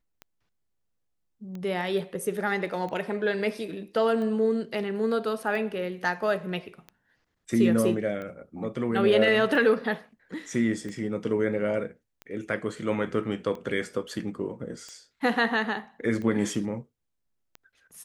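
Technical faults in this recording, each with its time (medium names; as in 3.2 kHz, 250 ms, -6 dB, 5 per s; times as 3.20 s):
tick 45 rpm -26 dBFS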